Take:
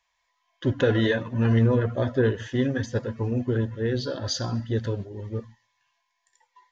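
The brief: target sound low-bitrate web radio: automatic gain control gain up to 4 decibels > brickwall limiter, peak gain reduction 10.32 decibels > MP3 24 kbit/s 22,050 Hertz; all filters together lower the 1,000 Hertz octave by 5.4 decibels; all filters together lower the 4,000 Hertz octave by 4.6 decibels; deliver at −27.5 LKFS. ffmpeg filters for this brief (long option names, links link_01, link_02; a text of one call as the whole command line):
ffmpeg -i in.wav -af "equalizer=frequency=1000:width_type=o:gain=-7,equalizer=frequency=4000:width_type=o:gain=-5.5,dynaudnorm=maxgain=4dB,alimiter=limit=-21.5dB:level=0:latency=1,volume=4dB" -ar 22050 -c:a libmp3lame -b:a 24k out.mp3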